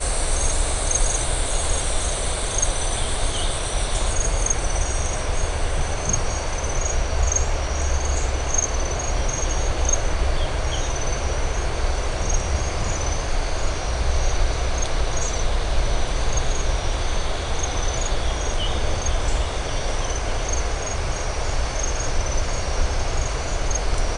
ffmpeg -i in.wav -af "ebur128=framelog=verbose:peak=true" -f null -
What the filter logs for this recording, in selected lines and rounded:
Integrated loudness:
  I:         -24.4 LUFS
  Threshold: -34.4 LUFS
Loudness range:
  LRA:         2.4 LU
  Threshold: -44.5 LUFS
  LRA low:   -25.6 LUFS
  LRA high:  -23.2 LUFS
True peak:
  Peak:       -7.0 dBFS